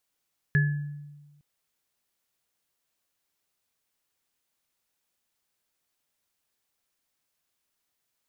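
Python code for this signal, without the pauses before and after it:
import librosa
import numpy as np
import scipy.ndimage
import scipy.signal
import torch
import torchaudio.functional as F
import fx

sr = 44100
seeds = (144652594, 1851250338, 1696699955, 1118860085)

y = fx.additive_free(sr, length_s=0.86, hz=146.0, level_db=-18.0, upper_db=(-17.5, -4), decay_s=1.3, upper_decays_s=(0.35, 0.54), upper_hz=(410.0, 1710.0))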